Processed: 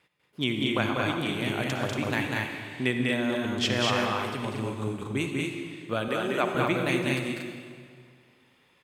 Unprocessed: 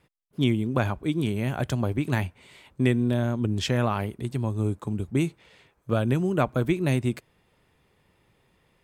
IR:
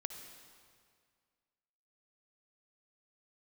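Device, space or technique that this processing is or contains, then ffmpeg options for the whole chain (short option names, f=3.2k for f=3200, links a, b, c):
stadium PA: -filter_complex "[0:a]highpass=f=240:p=1,equalizer=f=2.7k:t=o:w=2.3:g=7.5,aecho=1:1:195.3|233.2:0.708|0.631[a];[1:a]atrim=start_sample=2205[b];[a][b]afir=irnorm=-1:irlink=0,asettb=1/sr,asplit=3[c][d][e];[c]atrim=end=6.084[f];[d]atrim=start=6.08:end=6.55,asetpts=PTS-STARTPTS,afade=t=in:d=0.004:c=qsin,afade=t=out:st=0.466:d=0.004:c=qsin,highpass=250[g];[e]atrim=start=6.546[h];[f][g]acrossfade=d=0.004:c1=hsin:c2=qsin[i];[i][h]acrossfade=d=0.004:c1=qsin:c2=hsin,volume=-1.5dB"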